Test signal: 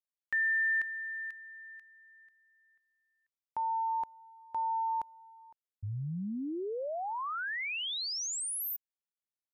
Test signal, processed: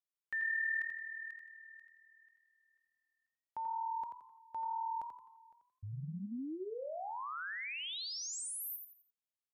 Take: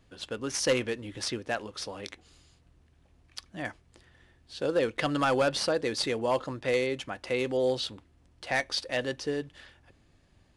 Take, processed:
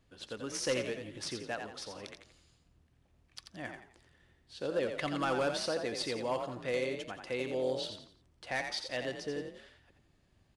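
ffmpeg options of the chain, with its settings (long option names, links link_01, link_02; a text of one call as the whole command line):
ffmpeg -i in.wav -filter_complex "[0:a]asplit=5[link_01][link_02][link_03][link_04][link_05];[link_02]adelay=86,afreqshift=39,volume=-6.5dB[link_06];[link_03]adelay=172,afreqshift=78,volume=-15.6dB[link_07];[link_04]adelay=258,afreqshift=117,volume=-24.7dB[link_08];[link_05]adelay=344,afreqshift=156,volume=-33.9dB[link_09];[link_01][link_06][link_07][link_08][link_09]amix=inputs=5:normalize=0,volume=-7dB" out.wav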